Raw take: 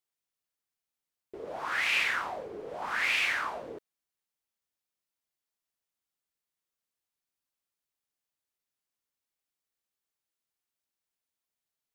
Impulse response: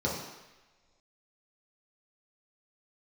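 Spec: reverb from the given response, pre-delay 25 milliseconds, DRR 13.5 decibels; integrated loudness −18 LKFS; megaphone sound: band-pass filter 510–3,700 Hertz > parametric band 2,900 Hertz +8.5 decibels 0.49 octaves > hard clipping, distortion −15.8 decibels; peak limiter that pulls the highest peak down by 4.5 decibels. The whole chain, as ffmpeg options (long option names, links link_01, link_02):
-filter_complex "[0:a]alimiter=limit=-21dB:level=0:latency=1,asplit=2[link_01][link_02];[1:a]atrim=start_sample=2205,adelay=25[link_03];[link_02][link_03]afir=irnorm=-1:irlink=0,volume=-22.5dB[link_04];[link_01][link_04]amix=inputs=2:normalize=0,highpass=510,lowpass=3700,equalizer=frequency=2900:width_type=o:width=0.49:gain=8.5,asoftclip=type=hard:threshold=-23.5dB,volume=11dB"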